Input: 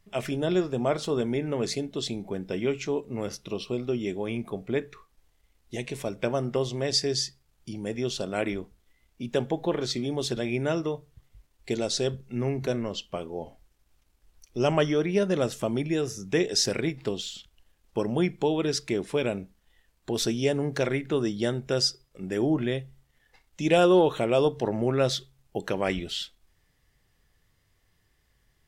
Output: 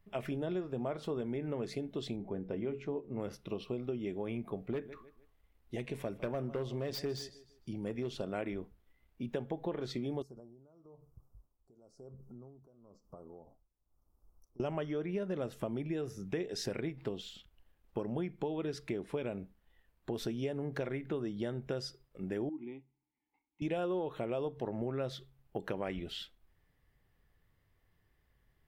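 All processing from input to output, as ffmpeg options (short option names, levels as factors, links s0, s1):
-filter_complex "[0:a]asettb=1/sr,asplit=3[s0][s1][s2];[s0]atrim=end=2.164[s3];[s1]atrim=start=2.16:end=3.2,asetpts=PTS-STARTPTS,afade=t=in:d=0.004:c=qsin,afade=t=out:st=1.036:d=0.004:c=qsin,highshelf=f=2100:g=-11.5,bandreject=f=60:t=h:w=6,bandreject=f=120:t=h:w=6,bandreject=f=180:t=h:w=6,bandreject=f=240:t=h:w=6,bandreject=f=300:t=h:w=6,bandreject=f=360:t=h:w=6,bandreject=f=420:t=h:w=6,bandreject=f=480:t=h:w=6[s4];[s2]atrim=start=3.196[s5];[s3][s4]acrossfade=d=0.004:c1=hsin:c2=qsin[s6];[s6][s5]acrossfade=d=0.004:c1=qsin:c2=hsin,asettb=1/sr,asplit=3[s7][s8][s9];[s7]atrim=end=4.704[s10];[s8]atrim=start=4.7:end=8.15,asetpts=PTS-STARTPTS,afade=t=in:d=0.004:c=qsin,afade=t=out:st=3.446:d=0.004:c=qsin,aecho=1:1:153|306|459:0.112|0.037|0.0122,atrim=end_sample=152145,asoftclip=type=hard:threshold=0.0794[s11];[s9]atrim=start=8.146[s12];[s10][s11]acrossfade=d=0.004:c1=hsin:c2=qsin[s13];[s13][s12]acrossfade=d=0.004:c1=qsin:c2=hsin,asettb=1/sr,asplit=3[s14][s15][s16];[s14]atrim=end=10.224[s17];[s15]atrim=start=10.22:end=14.6,asetpts=PTS-STARTPTS,afade=t=in:d=0.004:c=qsin,afade=t=out:st=4.376:d=0.004:c=qsin,acompressor=threshold=0.00708:ratio=6:attack=3.2:release=140:knee=1:detection=peak,tremolo=f=1:d=0.83,asuperstop=centerf=2600:order=12:qfactor=0.7[s18];[s16]atrim=start=14.596[s19];[s17][s18]acrossfade=d=0.004:c1=hsin:c2=qsin[s20];[s20][s19]acrossfade=d=0.004:c1=qsin:c2=hsin,asettb=1/sr,asplit=3[s21][s22][s23];[s21]atrim=end=22.494[s24];[s22]atrim=start=22.49:end=23.62,asetpts=PTS-STARTPTS,afade=t=in:d=0.004:c=qsin,afade=t=out:st=1.126:d=0.004:c=qsin,asplit=3[s25][s26][s27];[s25]bandpass=f=300:t=q:w=8,volume=1[s28];[s26]bandpass=f=870:t=q:w=8,volume=0.501[s29];[s27]bandpass=f=2240:t=q:w=8,volume=0.355[s30];[s28][s29][s30]amix=inputs=3:normalize=0,acompressor=threshold=0.02:ratio=2:attack=3.2:release=140:knee=1:detection=peak[s31];[s23]atrim=start=23.616[s32];[s24][s31]acrossfade=d=0.004:c1=hsin:c2=qsin[s33];[s33][s32]acrossfade=d=0.004:c1=qsin:c2=hsin,equalizer=f=6700:w=0.62:g=-13.5,acompressor=threshold=0.0316:ratio=5,volume=0.668"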